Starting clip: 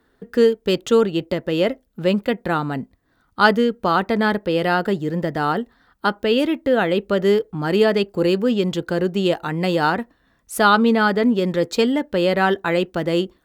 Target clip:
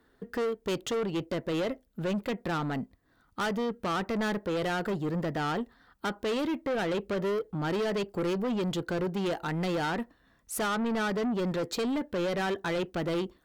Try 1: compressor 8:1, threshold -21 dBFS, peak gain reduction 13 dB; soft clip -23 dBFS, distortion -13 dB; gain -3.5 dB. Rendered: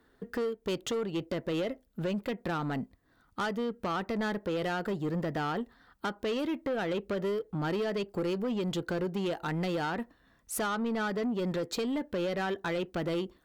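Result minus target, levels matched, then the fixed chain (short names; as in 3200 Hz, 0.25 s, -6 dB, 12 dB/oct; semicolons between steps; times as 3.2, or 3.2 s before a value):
compressor: peak gain reduction +5.5 dB
compressor 8:1, threshold -14.5 dBFS, peak gain reduction 7 dB; soft clip -23 dBFS, distortion -9 dB; gain -3.5 dB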